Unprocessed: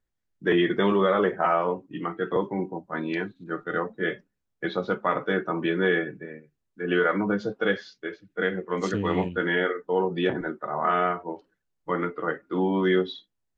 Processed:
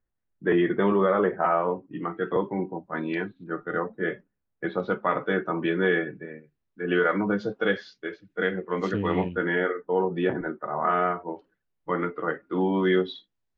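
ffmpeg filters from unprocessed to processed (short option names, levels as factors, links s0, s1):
-af "asetnsamples=n=441:p=0,asendcmd='2.14 lowpass f 3400;3.47 lowpass f 2000;4.8 lowpass f 3600;7.06 lowpass f 5800;8.51 lowpass f 3500;9.35 lowpass f 2200;11.29 lowpass f 3400;12.61 lowpass f 5000',lowpass=1900"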